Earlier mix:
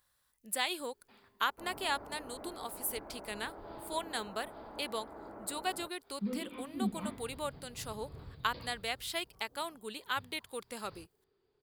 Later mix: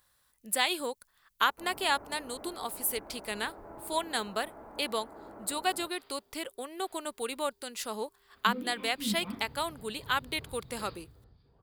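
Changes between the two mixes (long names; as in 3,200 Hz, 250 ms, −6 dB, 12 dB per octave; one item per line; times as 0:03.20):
speech +5.5 dB
second sound: entry +2.25 s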